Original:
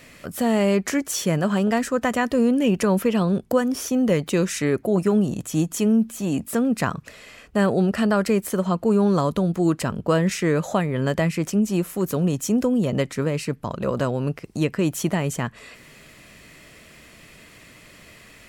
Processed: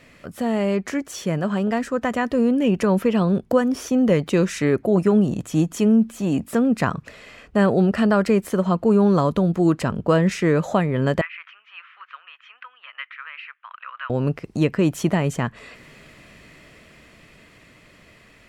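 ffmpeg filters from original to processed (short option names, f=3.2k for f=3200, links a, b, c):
-filter_complex "[0:a]asettb=1/sr,asplit=3[a][b][c];[a]atrim=end=11.214[d];[b]atrim=start=11.21:end=14.1,asetpts=PTS-STARTPTS,afade=t=in:d=0.004:c=qsin,afade=t=out:st=2.886:d=0.004:c=qsin,asuperpass=centerf=1900:order=8:qfactor=1[e];[c]atrim=start=14.096[f];[d][e]acrossfade=d=0.004:c1=hsin:c2=qsin[g];[g][f]acrossfade=d=0.004:c1=qsin:c2=hsin,lowpass=f=3.3k:p=1,dynaudnorm=f=400:g=13:m=5.5dB,volume=-2dB"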